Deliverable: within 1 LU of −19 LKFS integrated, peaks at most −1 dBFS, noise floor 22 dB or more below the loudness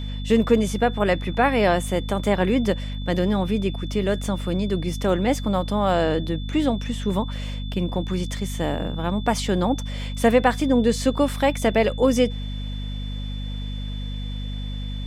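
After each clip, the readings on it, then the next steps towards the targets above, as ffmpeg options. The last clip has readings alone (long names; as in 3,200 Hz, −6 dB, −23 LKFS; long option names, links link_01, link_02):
mains hum 50 Hz; hum harmonics up to 250 Hz; level of the hum −27 dBFS; interfering tone 3,500 Hz; level of the tone −40 dBFS; integrated loudness −23.5 LKFS; sample peak −5.0 dBFS; target loudness −19.0 LKFS
→ -af "bandreject=frequency=50:width_type=h:width=4,bandreject=frequency=100:width_type=h:width=4,bandreject=frequency=150:width_type=h:width=4,bandreject=frequency=200:width_type=h:width=4,bandreject=frequency=250:width_type=h:width=4"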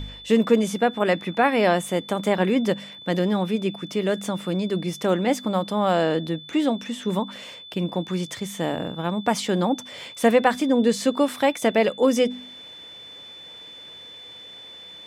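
mains hum none found; interfering tone 3,500 Hz; level of the tone −40 dBFS
→ -af "bandreject=frequency=3500:width=30"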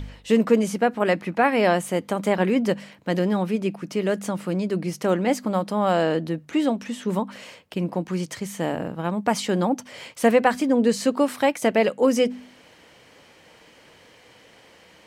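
interfering tone none found; integrated loudness −23.5 LKFS; sample peak −4.5 dBFS; target loudness −19.0 LKFS
→ -af "volume=4.5dB,alimiter=limit=-1dB:level=0:latency=1"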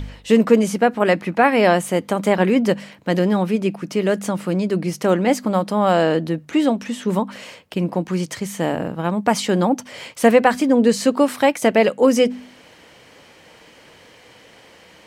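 integrated loudness −19.0 LKFS; sample peak −1.0 dBFS; background noise floor −48 dBFS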